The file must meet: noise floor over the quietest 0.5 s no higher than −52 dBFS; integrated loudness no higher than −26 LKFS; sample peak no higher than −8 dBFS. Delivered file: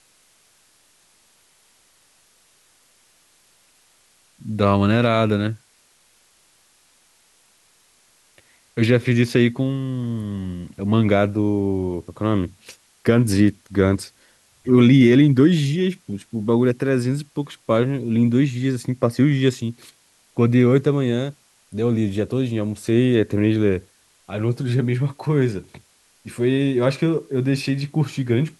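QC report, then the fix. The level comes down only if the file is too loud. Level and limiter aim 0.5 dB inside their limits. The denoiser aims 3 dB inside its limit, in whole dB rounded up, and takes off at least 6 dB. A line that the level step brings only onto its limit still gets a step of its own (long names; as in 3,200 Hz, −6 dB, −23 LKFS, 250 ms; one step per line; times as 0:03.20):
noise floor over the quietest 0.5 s −58 dBFS: in spec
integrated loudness −20.0 LKFS: out of spec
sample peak −4.5 dBFS: out of spec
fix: level −6.5 dB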